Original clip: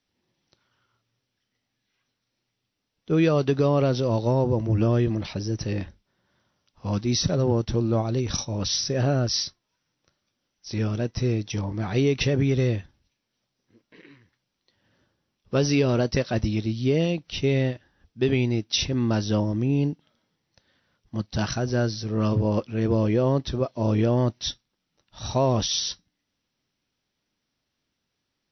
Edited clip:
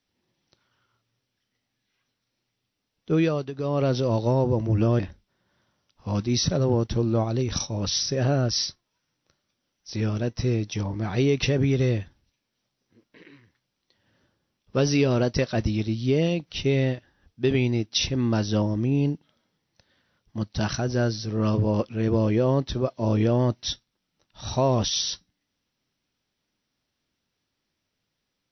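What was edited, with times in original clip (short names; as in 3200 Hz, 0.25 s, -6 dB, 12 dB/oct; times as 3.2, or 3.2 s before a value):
3.14–3.91 dip -13.5 dB, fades 0.38 s
4.99–5.77 cut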